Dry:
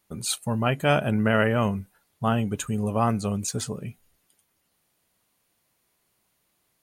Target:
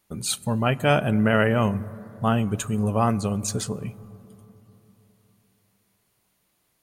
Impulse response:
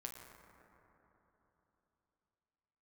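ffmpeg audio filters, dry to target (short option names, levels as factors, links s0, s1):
-filter_complex "[0:a]asplit=2[s0][s1];[1:a]atrim=start_sample=2205,lowshelf=f=390:g=8[s2];[s1][s2]afir=irnorm=-1:irlink=0,volume=0.266[s3];[s0][s3]amix=inputs=2:normalize=0"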